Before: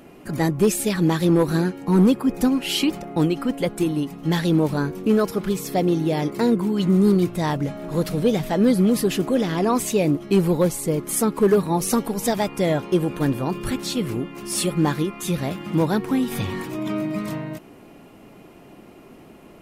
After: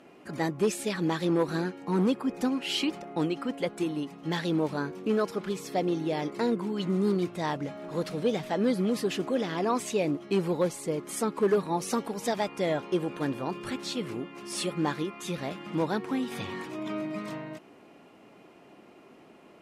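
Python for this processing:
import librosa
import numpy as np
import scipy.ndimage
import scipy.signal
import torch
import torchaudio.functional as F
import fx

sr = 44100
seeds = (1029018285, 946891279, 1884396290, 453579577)

y = fx.highpass(x, sr, hz=350.0, slope=6)
y = fx.air_absorb(y, sr, metres=54.0)
y = y * librosa.db_to_amplitude(-4.5)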